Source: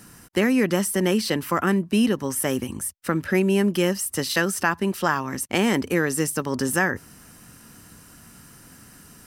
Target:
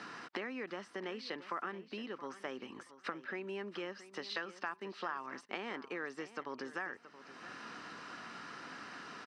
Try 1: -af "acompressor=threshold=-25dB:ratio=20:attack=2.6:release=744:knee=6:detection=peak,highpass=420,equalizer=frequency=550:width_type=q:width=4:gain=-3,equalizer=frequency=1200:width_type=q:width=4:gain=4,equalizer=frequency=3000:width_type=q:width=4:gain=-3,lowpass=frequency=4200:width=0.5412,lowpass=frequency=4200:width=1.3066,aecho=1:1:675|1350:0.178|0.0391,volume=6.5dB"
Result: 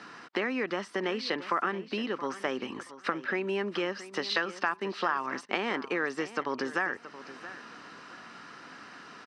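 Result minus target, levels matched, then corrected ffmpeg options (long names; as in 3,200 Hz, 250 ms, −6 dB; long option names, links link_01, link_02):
downward compressor: peak gain reduction −11 dB
-af "acompressor=threshold=-36.5dB:ratio=20:attack=2.6:release=744:knee=6:detection=peak,highpass=420,equalizer=frequency=550:width_type=q:width=4:gain=-3,equalizer=frequency=1200:width_type=q:width=4:gain=4,equalizer=frequency=3000:width_type=q:width=4:gain=-3,lowpass=frequency=4200:width=0.5412,lowpass=frequency=4200:width=1.3066,aecho=1:1:675|1350:0.178|0.0391,volume=6.5dB"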